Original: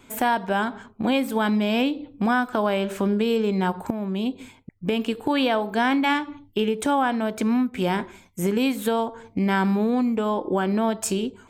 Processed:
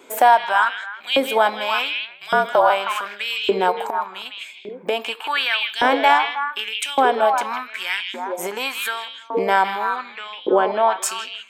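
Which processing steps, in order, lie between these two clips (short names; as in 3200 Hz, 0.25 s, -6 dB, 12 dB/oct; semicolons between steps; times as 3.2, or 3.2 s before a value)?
9.96–11.02 LPF 4100 Hz 12 dB/oct; delay with a stepping band-pass 0.158 s, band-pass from 2900 Hz, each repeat -1.4 oct, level -2.5 dB; 2.11–2.7 frequency shift -53 Hz; LFO high-pass saw up 0.86 Hz 400–3100 Hz; gain +4 dB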